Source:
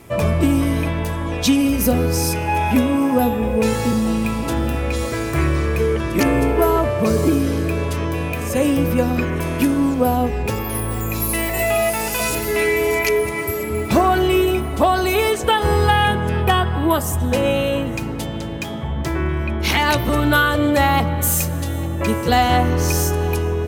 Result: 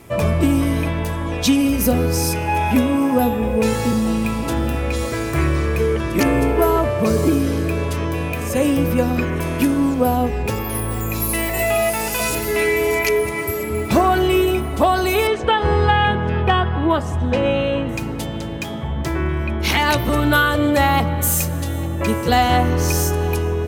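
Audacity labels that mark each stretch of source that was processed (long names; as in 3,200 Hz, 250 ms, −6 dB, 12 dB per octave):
15.270000	17.890000	low-pass filter 3,700 Hz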